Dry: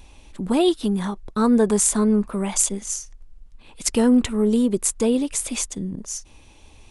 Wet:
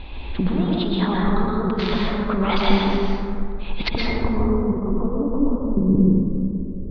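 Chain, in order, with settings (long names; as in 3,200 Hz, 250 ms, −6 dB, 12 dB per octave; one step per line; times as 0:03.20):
Butterworth low-pass 4,200 Hz 72 dB per octave, from 0:03.90 1,200 Hz, from 0:05.41 550 Hz
compressor whose output falls as the input rises −29 dBFS, ratio −1
dense smooth reverb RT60 2.3 s, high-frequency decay 0.35×, pre-delay 105 ms, DRR −4 dB
level +4 dB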